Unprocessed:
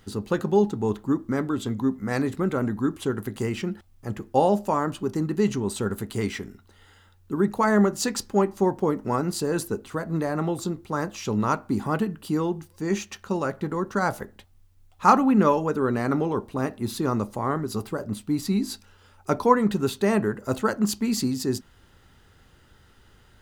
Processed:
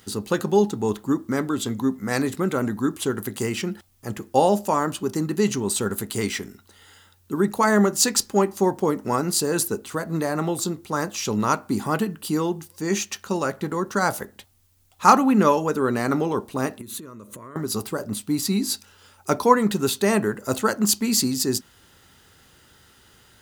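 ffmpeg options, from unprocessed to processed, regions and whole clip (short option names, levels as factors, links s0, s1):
-filter_complex "[0:a]asettb=1/sr,asplit=3[s0][s1][s2];[s0]atrim=end=16.814[s3];[s1]atrim=start=16.81:end=17.56,asetpts=PTS-STARTPTS,afade=t=in:d=0.004:c=qsin,afade=t=out:st=0.746:d=0.004:c=qsin,equalizer=f=5000:t=o:w=0.35:g=-14,acompressor=threshold=0.0141:ratio=16:attack=3.2:release=140:knee=1:detection=peak,asuperstop=centerf=790:order=4:qfactor=2.7[s4];[s2]atrim=start=17.556[s5];[s3][s4]acrossfade=d=0.004:c1=hsin:c2=qsin[s6];[s6][s5]acrossfade=d=0.004:c1=qsin:c2=hsin,highpass=f=120:p=1,highshelf=f=3800:g=10.5,volume=1.26"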